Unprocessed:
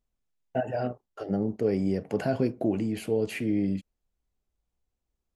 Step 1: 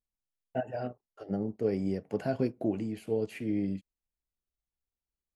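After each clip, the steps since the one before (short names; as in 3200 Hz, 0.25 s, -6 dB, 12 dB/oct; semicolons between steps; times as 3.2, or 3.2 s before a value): upward expander 1.5:1, over -43 dBFS; gain -2.5 dB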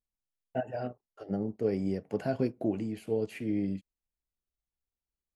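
nothing audible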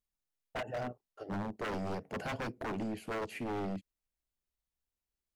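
wavefolder -31.5 dBFS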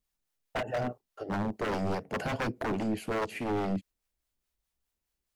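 harmonic tremolo 4.8 Hz, depth 50%, crossover 540 Hz; gain +8.5 dB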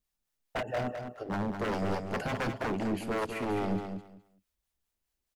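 feedback echo 0.207 s, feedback 19%, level -7 dB; gain -1 dB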